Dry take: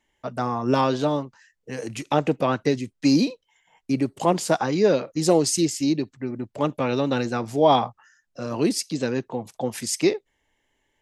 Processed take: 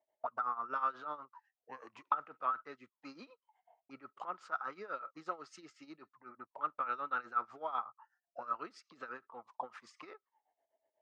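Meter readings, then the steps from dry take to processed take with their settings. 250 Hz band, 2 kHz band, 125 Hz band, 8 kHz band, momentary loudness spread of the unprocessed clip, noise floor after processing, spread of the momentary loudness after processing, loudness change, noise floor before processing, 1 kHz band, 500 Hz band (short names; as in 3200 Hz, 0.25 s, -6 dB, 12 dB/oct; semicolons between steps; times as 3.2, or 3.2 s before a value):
-33.0 dB, -12.0 dB, under -35 dB, under -35 dB, 13 LU, under -85 dBFS, 19 LU, -16.5 dB, -74 dBFS, -10.5 dB, -26.5 dB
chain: LPF 5900 Hz 12 dB/oct; low shelf 120 Hz -4.5 dB; compressor 4:1, threshold -21 dBFS, peak gain reduction 8 dB; auto-wah 640–1300 Hz, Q 19, up, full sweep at -26.5 dBFS; tremolo 8.1 Hz, depth 80%; gain +13 dB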